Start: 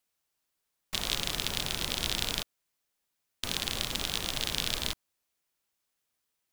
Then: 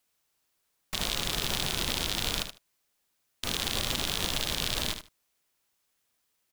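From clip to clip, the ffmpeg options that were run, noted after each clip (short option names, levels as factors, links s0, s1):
-filter_complex "[0:a]alimiter=limit=0.15:level=0:latency=1:release=39,asplit=2[s0][s1];[s1]aecho=0:1:76|152:0.355|0.0568[s2];[s0][s2]amix=inputs=2:normalize=0,volume=1.78"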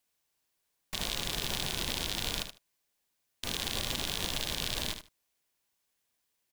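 -af "bandreject=f=1300:w=11,volume=0.668"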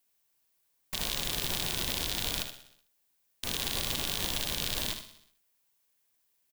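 -filter_complex "[0:a]highshelf=f=12000:g=9.5,asplit=2[s0][s1];[s1]aecho=0:1:62|124|186|248|310|372:0.224|0.132|0.0779|0.046|0.0271|0.016[s2];[s0][s2]amix=inputs=2:normalize=0"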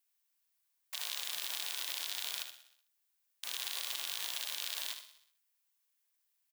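-af "highpass=990,volume=0.531"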